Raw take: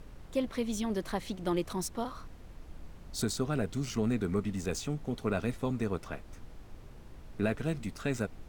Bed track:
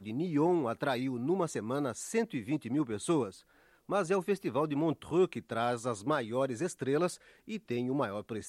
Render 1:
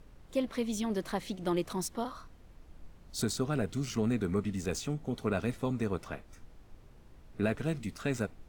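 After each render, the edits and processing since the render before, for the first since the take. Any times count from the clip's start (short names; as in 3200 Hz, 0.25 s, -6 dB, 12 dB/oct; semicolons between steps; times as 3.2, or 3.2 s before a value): noise print and reduce 6 dB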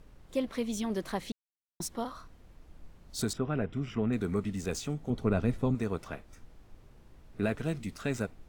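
1.32–1.8 mute; 3.33–4.13 polynomial smoothing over 25 samples; 5.1–5.75 tilt -2 dB/oct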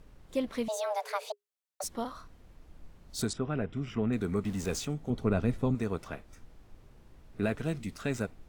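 0.68–1.84 frequency shift +410 Hz; 3.27–3.86 elliptic low-pass 10000 Hz; 4.45–4.85 zero-crossing step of -42 dBFS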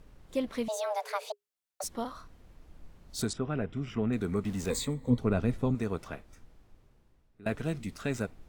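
4.7–5.18 ripple EQ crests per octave 1, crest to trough 15 dB; 6.06–7.46 fade out, to -22.5 dB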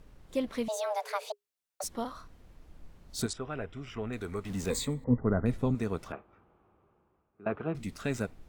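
3.26–4.5 bell 190 Hz -10.5 dB 1.7 oct; 5.04–5.46 brick-wall FIR low-pass 2100 Hz; 6.12–7.75 speaker cabinet 110–2400 Hz, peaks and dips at 130 Hz -8 dB, 260 Hz -6 dB, 370 Hz +5 dB, 810 Hz +5 dB, 1200 Hz +8 dB, 1900 Hz -9 dB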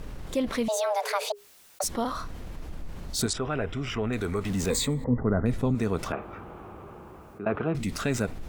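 fast leveller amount 50%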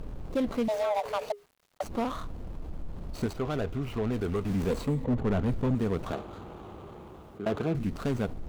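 median filter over 25 samples; overloaded stage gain 21.5 dB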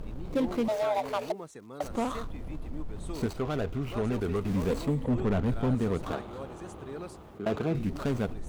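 add bed track -11 dB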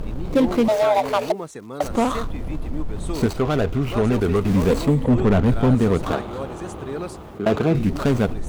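gain +10.5 dB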